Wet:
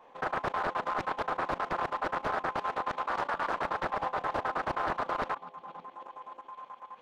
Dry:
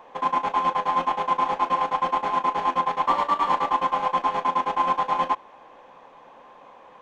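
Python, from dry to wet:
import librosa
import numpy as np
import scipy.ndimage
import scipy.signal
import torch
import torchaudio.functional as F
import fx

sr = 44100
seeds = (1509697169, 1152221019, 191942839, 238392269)

y = fx.peak_eq(x, sr, hz=740.0, db=10.0, octaves=0.21, at=(3.91, 4.46))
y = fx.echo_stepped(y, sr, ms=572, hz=170.0, octaves=1.4, feedback_pct=70, wet_db=-8)
y = fx.level_steps(y, sr, step_db=13)
y = fx.low_shelf(y, sr, hz=170.0, db=-7.5, at=(2.52, 3.17))
y = fx.doppler_dist(y, sr, depth_ms=0.87)
y = y * 10.0 ** (-4.5 / 20.0)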